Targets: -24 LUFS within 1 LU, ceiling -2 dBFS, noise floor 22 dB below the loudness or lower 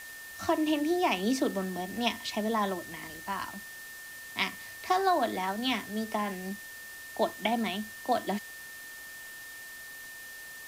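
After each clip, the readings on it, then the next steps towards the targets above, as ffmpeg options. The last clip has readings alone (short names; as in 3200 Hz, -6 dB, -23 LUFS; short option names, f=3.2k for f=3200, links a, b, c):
steady tone 1800 Hz; tone level -44 dBFS; noise floor -45 dBFS; noise floor target -54 dBFS; loudness -31.5 LUFS; peak -13.0 dBFS; loudness target -24.0 LUFS
-> -af "bandreject=f=1.8k:w=30"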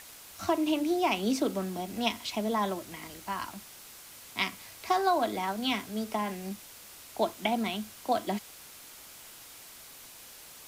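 steady tone none; noise floor -50 dBFS; noise floor target -53 dBFS
-> -af "afftdn=nr=6:nf=-50"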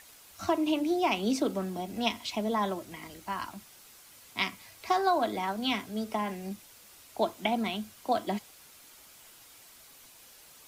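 noise floor -55 dBFS; loudness -31.5 LUFS; peak -13.0 dBFS; loudness target -24.0 LUFS
-> -af "volume=7.5dB"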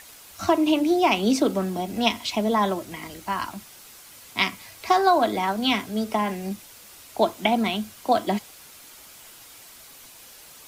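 loudness -24.0 LUFS; peak -5.5 dBFS; noise floor -47 dBFS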